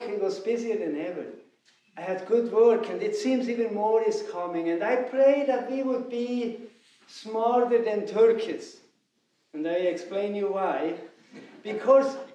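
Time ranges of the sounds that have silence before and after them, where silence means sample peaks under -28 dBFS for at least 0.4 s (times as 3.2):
2.03–6.55
7.32–8.56
9.59–10.94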